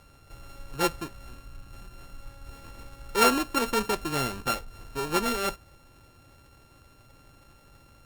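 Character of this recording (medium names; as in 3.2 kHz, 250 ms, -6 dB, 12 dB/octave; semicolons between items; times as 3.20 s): a buzz of ramps at a fixed pitch in blocks of 32 samples; Opus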